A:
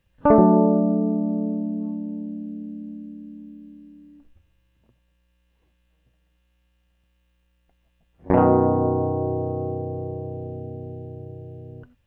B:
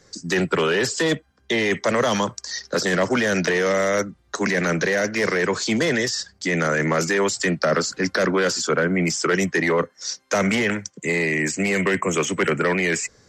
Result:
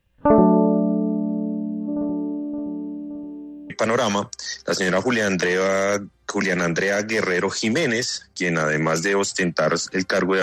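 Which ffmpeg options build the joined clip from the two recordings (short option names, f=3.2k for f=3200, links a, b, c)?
-filter_complex "[0:a]asplit=3[a][b][c];[a]afade=t=out:st=1.87:d=0.02[d];[b]asplit=2[e][f];[f]adelay=570,lowpass=f=1.3k:p=1,volume=-6dB,asplit=2[g][h];[h]adelay=570,lowpass=f=1.3k:p=1,volume=0.54,asplit=2[i][j];[j]adelay=570,lowpass=f=1.3k:p=1,volume=0.54,asplit=2[k][l];[l]adelay=570,lowpass=f=1.3k:p=1,volume=0.54,asplit=2[m][n];[n]adelay=570,lowpass=f=1.3k:p=1,volume=0.54,asplit=2[o][p];[p]adelay=570,lowpass=f=1.3k:p=1,volume=0.54,asplit=2[q][r];[r]adelay=570,lowpass=f=1.3k:p=1,volume=0.54[s];[e][g][i][k][m][o][q][s]amix=inputs=8:normalize=0,afade=t=in:st=1.87:d=0.02,afade=t=out:st=3.7:d=0.02[t];[c]afade=t=in:st=3.7:d=0.02[u];[d][t][u]amix=inputs=3:normalize=0,apad=whole_dur=10.42,atrim=end=10.42,atrim=end=3.702[v];[1:a]atrim=start=1.748:end=8.47[w];[v][w]acrossfade=d=0.004:c1=hsin:c2=hsin"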